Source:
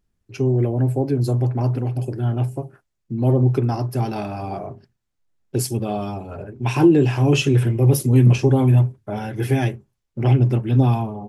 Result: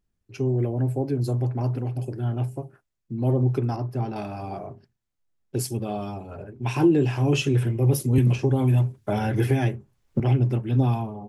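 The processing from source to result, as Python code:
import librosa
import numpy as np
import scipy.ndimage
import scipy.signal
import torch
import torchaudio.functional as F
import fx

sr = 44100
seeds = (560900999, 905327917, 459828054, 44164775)

y = fx.lowpass(x, sr, hz=1800.0, slope=6, at=(3.76, 4.16))
y = fx.band_squash(y, sr, depth_pct=100, at=(8.18, 10.2))
y = y * librosa.db_to_amplitude(-5.0)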